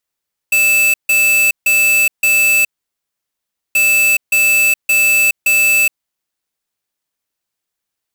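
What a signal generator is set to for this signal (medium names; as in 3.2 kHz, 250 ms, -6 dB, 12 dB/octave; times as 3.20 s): beep pattern square 2.63 kHz, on 0.42 s, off 0.15 s, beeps 4, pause 1.10 s, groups 2, -11.5 dBFS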